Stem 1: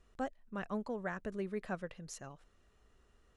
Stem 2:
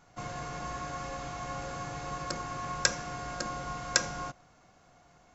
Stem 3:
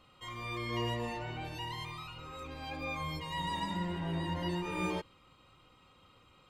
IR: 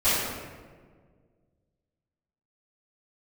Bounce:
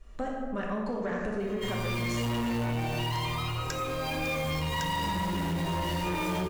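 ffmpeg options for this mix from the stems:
-filter_complex "[0:a]acompressor=threshold=-39dB:ratio=6,volume=-1dB,asplit=3[a][b][c];[b]volume=-3dB[d];[1:a]adelay=850,volume=-8.5dB[e];[2:a]acrusher=bits=3:mode=log:mix=0:aa=0.000001,adelay=1400,volume=-0.5dB,asplit=2[f][g];[g]volume=-5dB[h];[c]apad=whole_len=273352[i];[e][i]sidechaincompress=threshold=-45dB:ratio=8:attack=16:release=390[j];[a][f]amix=inputs=2:normalize=0,dynaudnorm=f=110:g=3:m=9.5dB,alimiter=limit=-20.5dB:level=0:latency=1,volume=0dB[k];[3:a]atrim=start_sample=2205[l];[d][h]amix=inputs=2:normalize=0[m];[m][l]afir=irnorm=-1:irlink=0[n];[j][k][n]amix=inputs=3:normalize=0,asoftclip=type=tanh:threshold=-21.5dB,acompressor=threshold=-28dB:ratio=6"

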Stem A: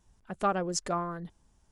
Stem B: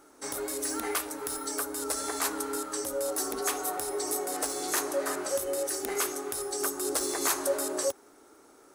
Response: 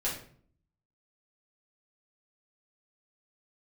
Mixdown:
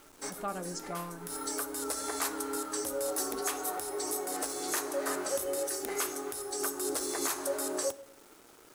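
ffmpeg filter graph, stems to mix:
-filter_complex "[0:a]volume=-10.5dB,asplit=3[a][b][c];[b]volume=-13dB[d];[1:a]acrusher=bits=8:mix=0:aa=0.000001,volume=-2dB,asplit=2[e][f];[f]volume=-18dB[g];[c]apad=whole_len=385657[h];[e][h]sidechaincompress=threshold=-56dB:ratio=8:attack=7.1:release=207[i];[2:a]atrim=start_sample=2205[j];[d][g]amix=inputs=2:normalize=0[k];[k][j]afir=irnorm=-1:irlink=0[l];[a][i][l]amix=inputs=3:normalize=0,alimiter=limit=-20dB:level=0:latency=1:release=338"

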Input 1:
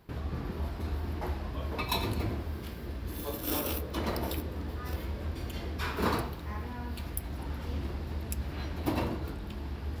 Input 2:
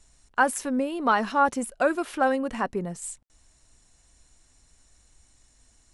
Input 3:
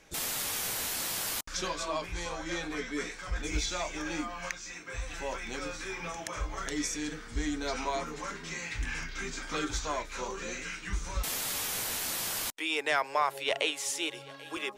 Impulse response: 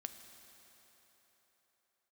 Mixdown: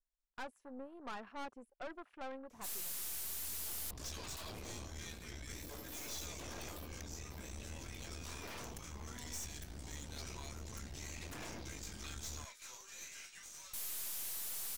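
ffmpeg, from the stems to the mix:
-filter_complex "[0:a]equalizer=f=1.7k:t=o:w=0.59:g=-14.5,aeval=exprs='0.0251*(abs(mod(val(0)/0.0251+3,4)-2)-1)':c=same,adelay=2450,volume=-7dB[a];[1:a]afwtdn=0.0126,bass=f=250:g=-10,treble=f=4k:g=-4,volume=-16dB,asplit=2[b][c];[2:a]aderivative,adelay=2500,volume=-0.5dB[d];[c]apad=whole_len=549070[e];[a][e]sidechaincompress=threshold=-57dB:ratio=8:attack=47:release=1040[f];[f][b][d]amix=inputs=3:normalize=0,aeval=exprs='(tanh(112*val(0)+0.75)-tanh(0.75))/112':c=same"

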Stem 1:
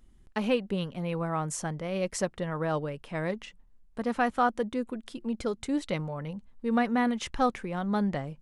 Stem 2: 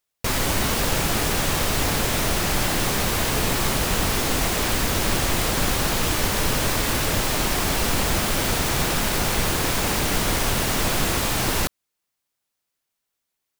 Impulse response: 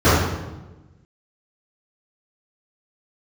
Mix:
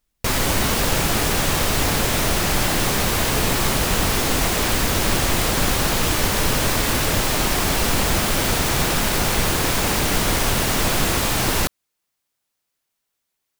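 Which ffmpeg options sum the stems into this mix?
-filter_complex "[0:a]volume=-19dB[a];[1:a]volume=2.5dB[b];[a][b]amix=inputs=2:normalize=0"

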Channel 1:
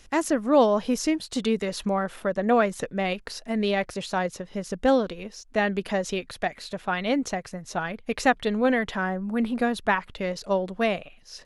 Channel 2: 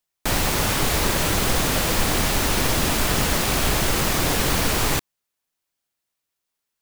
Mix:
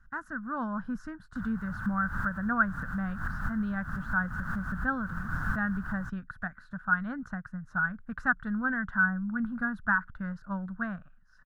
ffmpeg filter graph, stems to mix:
-filter_complex "[0:a]volume=-4dB,asplit=2[a][b];[1:a]adelay=1100,volume=-8.5dB[c];[b]apad=whole_len=348997[d];[c][d]sidechaincompress=threshold=-47dB:ratio=4:attack=21:release=100[e];[a][e]amix=inputs=2:normalize=0,dynaudnorm=f=120:g=11:m=3.5dB,firequalizer=gain_entry='entry(190,0);entry(390,-28);entry(1500,9);entry(2200,-29)':delay=0.05:min_phase=1"

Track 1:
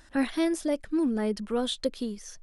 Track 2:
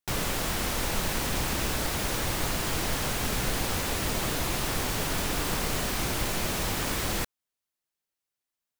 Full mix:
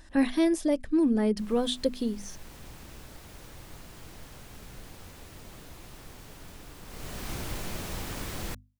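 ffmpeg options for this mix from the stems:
-filter_complex "[0:a]acontrast=50,bandreject=f=1.4k:w=7.6,volume=-6dB,asplit=2[a][b];[1:a]adelay=1300,volume=-9dB,afade=t=in:st=6.84:d=0.47:silence=0.266073[c];[b]apad=whole_len=445348[d];[c][d]sidechaincompress=threshold=-32dB:ratio=3:attack=5.4:release=667[e];[a][e]amix=inputs=2:normalize=0,lowshelf=f=270:g=6.5,bandreject=f=50:t=h:w=6,bandreject=f=100:t=h:w=6,bandreject=f=150:t=h:w=6,bandreject=f=200:t=h:w=6,bandreject=f=250:t=h:w=6"

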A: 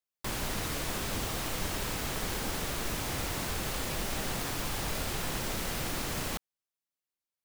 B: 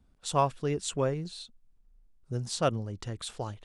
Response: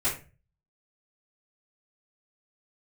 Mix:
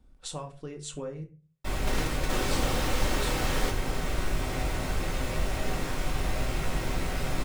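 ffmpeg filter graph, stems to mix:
-filter_complex "[0:a]highshelf=f=8.3k:g=-9.5,adelay=1400,volume=2.5dB,asplit=2[a][b];[b]volume=-10dB[c];[1:a]acompressor=threshold=-38dB:ratio=16,volume=0.5dB,asplit=3[d][e][f];[d]atrim=end=1.24,asetpts=PTS-STARTPTS,afade=t=out:st=1.236:d=0.004:c=hsin[g];[e]atrim=start=1.24:end=1.8,asetpts=PTS-STARTPTS,volume=0[h];[f]atrim=start=1.8,asetpts=PTS-STARTPTS,afade=t=in:d=0.004:c=hsin[i];[g][h][i]concat=n=3:v=0:a=1,asplit=3[j][k][l];[k]volume=-11dB[m];[l]apad=whole_len=390163[n];[a][n]sidechaingate=range=-33dB:threshold=-58dB:ratio=16:detection=peak[o];[2:a]atrim=start_sample=2205[p];[c][m]amix=inputs=2:normalize=0[q];[q][p]afir=irnorm=-1:irlink=0[r];[o][j][r]amix=inputs=3:normalize=0,equalizer=f=510:t=o:w=0.29:g=3.5"

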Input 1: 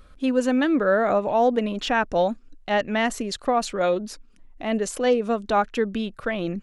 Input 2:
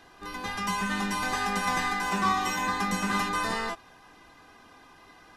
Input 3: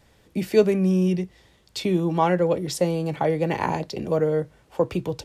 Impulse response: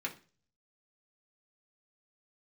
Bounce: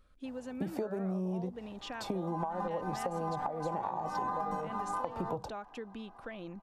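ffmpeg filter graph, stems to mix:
-filter_complex "[0:a]acompressor=threshold=-23dB:ratio=6,volume=-15.5dB,asplit=2[a][b];[1:a]dynaudnorm=f=180:g=9:m=9.5dB,adelay=1600,volume=-0.5dB[c];[2:a]highshelf=f=3.6k:g=8,acompressor=threshold=-23dB:ratio=3,adelay=250,volume=-2.5dB[d];[b]apad=whole_len=307196[e];[c][e]sidechaincompress=threshold=-59dB:ratio=10:attack=6.4:release=370[f];[f][d]amix=inputs=2:normalize=0,firequalizer=gain_entry='entry(400,0);entry(790,13);entry(2100,-15)':delay=0.05:min_phase=1,acompressor=threshold=-23dB:ratio=6,volume=0dB[g];[a][g]amix=inputs=2:normalize=0,acompressor=threshold=-32dB:ratio=6"

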